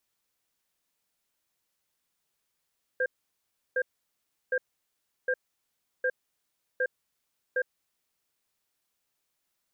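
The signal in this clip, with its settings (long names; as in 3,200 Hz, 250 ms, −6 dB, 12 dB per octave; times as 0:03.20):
tone pair in a cadence 508 Hz, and 1,600 Hz, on 0.06 s, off 0.70 s, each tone −26.5 dBFS 5.13 s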